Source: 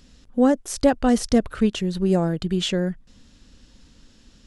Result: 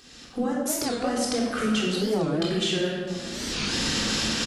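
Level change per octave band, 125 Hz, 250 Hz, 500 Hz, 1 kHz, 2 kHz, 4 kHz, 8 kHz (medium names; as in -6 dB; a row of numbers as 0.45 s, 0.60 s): -5.0 dB, -5.5 dB, -4.0 dB, -3.0 dB, +4.5 dB, +6.0 dB, +5.0 dB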